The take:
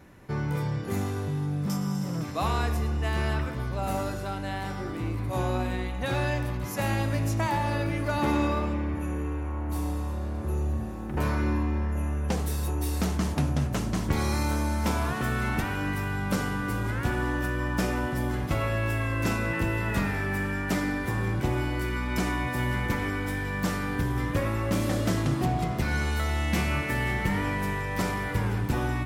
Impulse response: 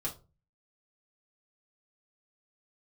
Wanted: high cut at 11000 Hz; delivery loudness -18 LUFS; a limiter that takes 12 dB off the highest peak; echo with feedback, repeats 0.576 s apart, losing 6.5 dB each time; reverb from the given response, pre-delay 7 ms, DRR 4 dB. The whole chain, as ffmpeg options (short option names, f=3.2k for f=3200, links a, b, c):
-filter_complex "[0:a]lowpass=11k,alimiter=level_in=3dB:limit=-24dB:level=0:latency=1,volume=-3dB,aecho=1:1:576|1152|1728|2304|2880|3456:0.473|0.222|0.105|0.0491|0.0231|0.0109,asplit=2[a][b];[1:a]atrim=start_sample=2205,adelay=7[c];[b][c]afir=irnorm=-1:irlink=0,volume=-6dB[d];[a][d]amix=inputs=2:normalize=0,volume=14dB"